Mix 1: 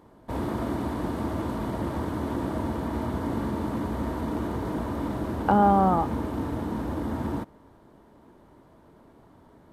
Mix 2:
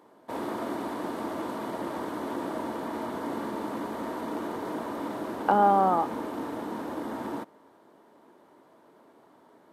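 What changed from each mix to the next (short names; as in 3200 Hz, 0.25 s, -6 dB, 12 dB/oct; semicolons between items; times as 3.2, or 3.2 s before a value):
master: add HPF 320 Hz 12 dB/oct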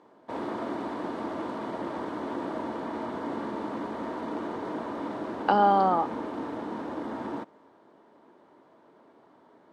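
speech: remove LPF 1700 Hz; master: add air absorption 93 m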